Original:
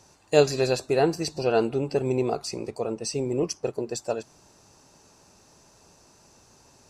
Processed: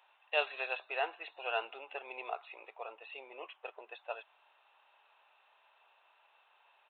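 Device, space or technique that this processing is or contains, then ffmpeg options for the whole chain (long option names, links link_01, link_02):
musical greeting card: -af "aresample=8000,aresample=44100,highpass=frequency=750:width=0.5412,highpass=frequency=750:width=1.3066,equalizer=frequency=2800:width_type=o:width=0.45:gain=5.5,volume=-5dB"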